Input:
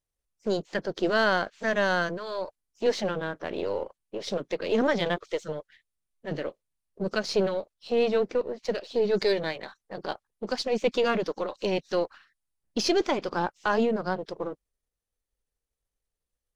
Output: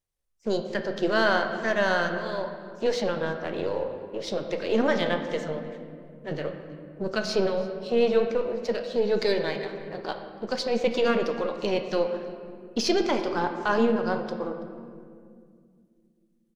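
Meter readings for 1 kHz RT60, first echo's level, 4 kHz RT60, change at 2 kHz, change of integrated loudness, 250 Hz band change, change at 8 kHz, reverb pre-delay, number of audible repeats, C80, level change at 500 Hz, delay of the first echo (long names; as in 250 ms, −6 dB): 1.9 s, −22.0 dB, 1.3 s, +1.0 dB, +1.5 dB, +2.0 dB, 0.0 dB, 8 ms, 1, 8.0 dB, +1.5 dB, 331 ms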